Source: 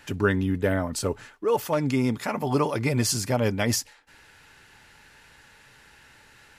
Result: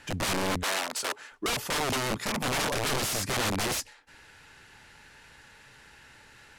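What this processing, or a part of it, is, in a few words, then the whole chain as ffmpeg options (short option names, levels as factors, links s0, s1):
overflowing digital effects unit: -filter_complex "[0:a]aeval=exprs='(mod(14.1*val(0)+1,2)-1)/14.1':c=same,lowpass=12000,asettb=1/sr,asplit=3[s0][s1][s2];[s0]atrim=end=0.634[s3];[s1]atrim=start=0.63:end=1.32,asetpts=PTS-STARTPTS,afade=t=in:d=0.004:c=qsin,afade=t=out:st=0.686:d=0.004:c=qsin,highpass=470[s4];[s2]atrim=start=1.316[s5];[s3][s4]acrossfade=d=0.004:c1=hsin:c2=qsin[s6];[s6][s5]acrossfade=d=0.004:c1=qsin:c2=hsin"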